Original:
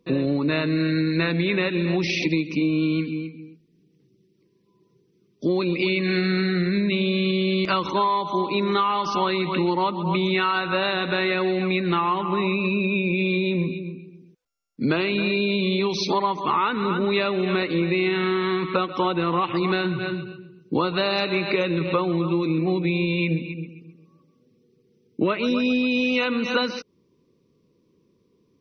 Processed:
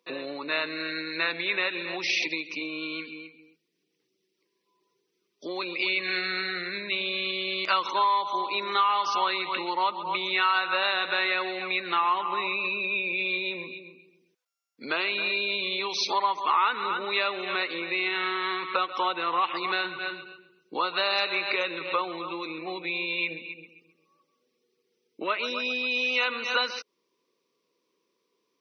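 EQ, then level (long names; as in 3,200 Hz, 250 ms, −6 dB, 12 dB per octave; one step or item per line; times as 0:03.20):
high-pass filter 760 Hz 12 dB per octave
0.0 dB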